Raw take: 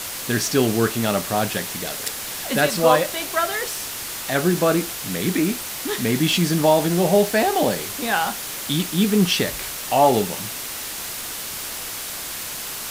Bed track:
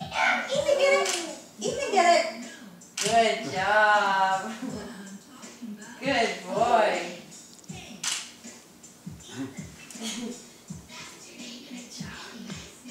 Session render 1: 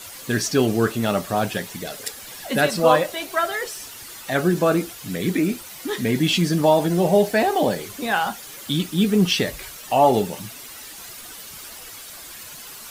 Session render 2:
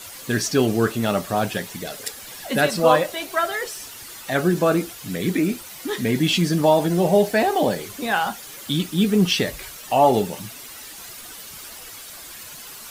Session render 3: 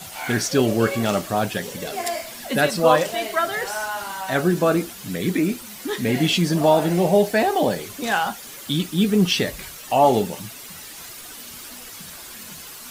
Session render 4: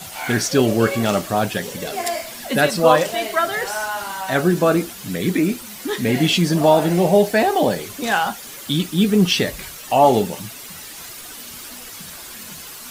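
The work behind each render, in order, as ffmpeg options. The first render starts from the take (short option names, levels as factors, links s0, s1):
-af "afftdn=nr=11:nf=-31"
-af anull
-filter_complex "[1:a]volume=0.398[s0];[0:a][s0]amix=inputs=2:normalize=0"
-af "volume=1.33,alimiter=limit=0.794:level=0:latency=1"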